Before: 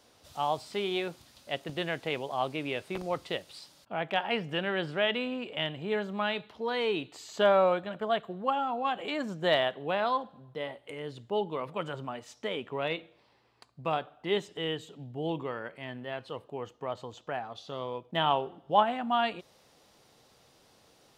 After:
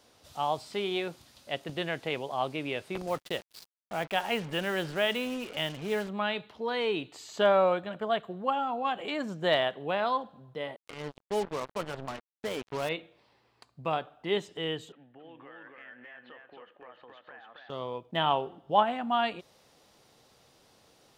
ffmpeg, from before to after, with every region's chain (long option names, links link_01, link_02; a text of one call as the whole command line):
ffmpeg -i in.wav -filter_complex "[0:a]asettb=1/sr,asplit=3[link_01][link_02][link_03];[link_01]atrim=end=3.074[link_04];[link_02]atrim=start=3.07:end=6.09,asetpts=PTS-STARTPTS,afade=type=in:duration=0.004:curve=qsin,afade=type=out:start_time=3.016:duration=0.004:curve=qsin,agate=range=-33dB:threshold=-49dB:ratio=3:release=100:detection=peak,acrusher=bits=6:mix=0:aa=0.5[link_05];[link_03]atrim=start=6.086[link_06];[link_04][link_05]acrossfade=duration=0.004:curve1=hsin:curve2=qsin[link_07];[link_07][link_06]acrossfade=duration=0.004:curve1=qsin:curve2=hsin,asettb=1/sr,asplit=3[link_08][link_09][link_10];[link_08]atrim=end=10.764[link_11];[link_09]atrim=start=10.76:end=12.89,asetpts=PTS-STARTPTS,afade=type=in:duration=0.004:curve=qsin,afade=type=out:start_time=2.126:duration=0.004:curve=qsin,highshelf=frequency=3200:gain=-8.5,acrusher=bits=5:mix=0:aa=0.5[link_12];[link_10]atrim=start=12.886[link_13];[link_11][link_12]acrossfade=duration=0.004:curve1=hsin:curve2=qsin[link_14];[link_14][link_13]acrossfade=duration=0.004:curve1=qsin:curve2=hsin,asettb=1/sr,asplit=3[link_15][link_16][link_17];[link_15]atrim=end=14.924[link_18];[link_16]atrim=start=14.92:end=17.7,asetpts=PTS-STARTPTS,afade=type=in:duration=0.004:curve=qsin,afade=type=out:start_time=2.776:duration=0.004:curve=qsin,highpass=410,equalizer=frequency=410:width_type=q:width=4:gain=-8,equalizer=frequency=650:width_type=q:width=4:gain=-6,equalizer=frequency=960:width_type=q:width=4:gain=-6,equalizer=frequency=1700:width_type=q:width=4:gain=10,lowpass=frequency=2800:width=0.5412,lowpass=frequency=2800:width=1.3066,acompressor=threshold=-47dB:ratio=6:attack=3.2:release=140:knee=1:detection=peak,aecho=1:1:271:0.708,atrim=end_sample=122598[link_19];[link_17]atrim=start=17.696[link_20];[link_18][link_19]acrossfade=duration=0.004:curve1=hsin:curve2=qsin[link_21];[link_21][link_20]acrossfade=duration=0.004:curve1=qsin:curve2=hsin" out.wav